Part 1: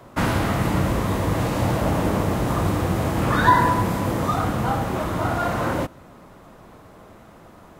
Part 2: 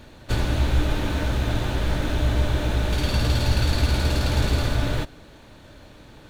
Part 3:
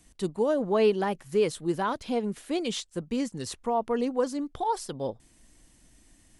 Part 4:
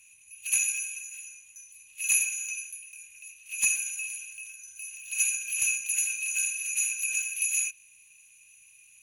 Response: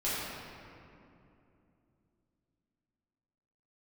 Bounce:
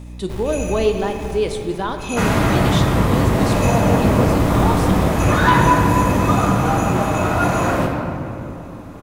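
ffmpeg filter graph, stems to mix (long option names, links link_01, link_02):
-filter_complex "[0:a]aeval=exprs='0.794*(cos(1*acos(clip(val(0)/0.794,-1,1)))-cos(1*PI/2))+0.126*(cos(5*acos(clip(val(0)/0.794,-1,1)))-cos(5*PI/2))':channel_layout=same,adelay=2000,volume=-6dB,asplit=2[link_01][link_02];[link_02]volume=-4dB[link_03];[1:a]acrusher=samples=30:mix=1:aa=0.000001,aeval=exprs='val(0)+0.0282*(sin(2*PI*60*n/s)+sin(2*PI*2*60*n/s)/2+sin(2*PI*3*60*n/s)/3+sin(2*PI*4*60*n/s)/4+sin(2*PI*5*60*n/s)/5)':channel_layout=same,volume=9.5dB,afade=type=out:start_time=1.26:duration=0.71:silence=0.334965,afade=type=in:start_time=3.69:duration=0.65:silence=0.251189,asplit=2[link_04][link_05];[link_05]volume=-18.5dB[link_06];[2:a]equalizer=frequency=3600:width_type=o:width=0.26:gain=7.5,volume=1.5dB,asplit=3[link_07][link_08][link_09];[link_08]volume=-11.5dB[link_10];[3:a]lowpass=6600,volume=-8.5dB,asplit=2[link_11][link_12];[link_12]volume=-3.5dB[link_13];[link_09]apad=whole_len=277716[link_14];[link_04][link_14]sidechaincompress=threshold=-29dB:ratio=8:attack=16:release=872[link_15];[4:a]atrim=start_sample=2205[link_16];[link_03][link_06][link_10][link_13]amix=inputs=4:normalize=0[link_17];[link_17][link_16]afir=irnorm=-1:irlink=0[link_18];[link_01][link_15][link_07][link_11][link_18]amix=inputs=5:normalize=0"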